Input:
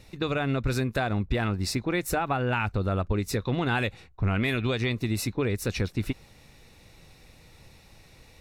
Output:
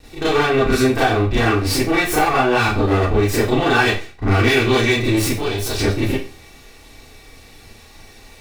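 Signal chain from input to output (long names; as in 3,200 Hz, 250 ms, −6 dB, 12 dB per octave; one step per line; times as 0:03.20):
lower of the sound and its delayed copy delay 2.6 ms
0:05.38–0:05.78: octave-band graphic EQ 125/250/500/2,000/4,000 Hz −4/−10/−5/−10/+6 dB
four-comb reverb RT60 0.34 s, combs from 27 ms, DRR −8.5 dB
level +3 dB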